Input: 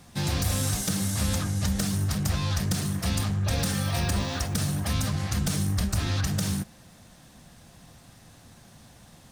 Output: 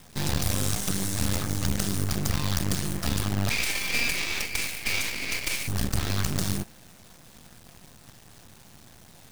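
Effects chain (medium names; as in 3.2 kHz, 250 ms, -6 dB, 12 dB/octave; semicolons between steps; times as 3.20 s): companded quantiser 4-bit; 3.50–5.68 s: resonant high-pass 2.3 kHz, resonance Q 9.7; half-wave rectifier; trim +3 dB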